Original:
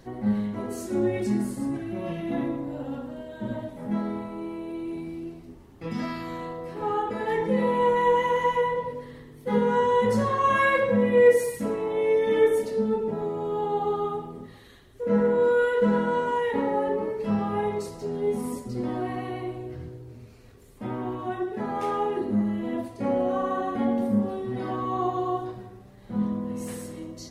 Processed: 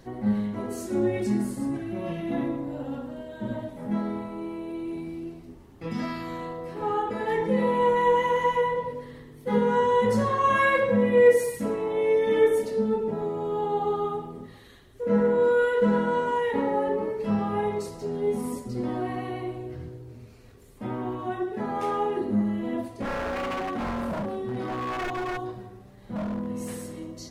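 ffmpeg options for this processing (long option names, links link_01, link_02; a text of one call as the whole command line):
ffmpeg -i in.wav -filter_complex "[0:a]asplit=3[link_01][link_02][link_03];[link_01]afade=type=out:start_time=22.86:duration=0.02[link_04];[link_02]aeval=exprs='0.0562*(abs(mod(val(0)/0.0562+3,4)-2)-1)':channel_layout=same,afade=type=in:start_time=22.86:duration=0.02,afade=type=out:start_time=26.46:duration=0.02[link_05];[link_03]afade=type=in:start_time=26.46:duration=0.02[link_06];[link_04][link_05][link_06]amix=inputs=3:normalize=0" out.wav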